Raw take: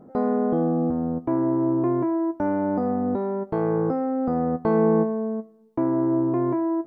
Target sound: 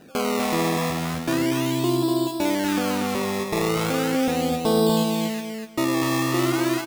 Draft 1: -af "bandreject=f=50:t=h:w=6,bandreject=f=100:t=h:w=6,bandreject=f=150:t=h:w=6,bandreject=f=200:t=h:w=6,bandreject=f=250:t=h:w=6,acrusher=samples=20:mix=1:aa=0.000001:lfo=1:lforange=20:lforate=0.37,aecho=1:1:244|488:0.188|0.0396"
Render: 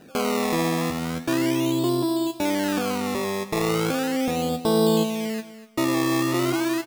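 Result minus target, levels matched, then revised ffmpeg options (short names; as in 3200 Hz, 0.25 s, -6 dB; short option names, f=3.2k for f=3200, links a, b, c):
echo-to-direct -10.5 dB
-af "bandreject=f=50:t=h:w=6,bandreject=f=100:t=h:w=6,bandreject=f=150:t=h:w=6,bandreject=f=200:t=h:w=6,bandreject=f=250:t=h:w=6,acrusher=samples=20:mix=1:aa=0.000001:lfo=1:lforange=20:lforate=0.37,aecho=1:1:244|488|732:0.631|0.133|0.0278"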